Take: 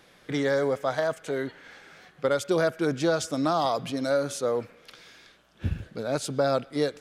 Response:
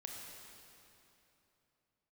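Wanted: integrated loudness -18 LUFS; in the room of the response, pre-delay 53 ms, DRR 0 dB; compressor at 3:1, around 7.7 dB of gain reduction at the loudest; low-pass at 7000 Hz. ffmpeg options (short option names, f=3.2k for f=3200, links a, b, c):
-filter_complex "[0:a]lowpass=7k,acompressor=threshold=-30dB:ratio=3,asplit=2[a][b];[1:a]atrim=start_sample=2205,adelay=53[c];[b][c]afir=irnorm=-1:irlink=0,volume=2.5dB[d];[a][d]amix=inputs=2:normalize=0,volume=13dB"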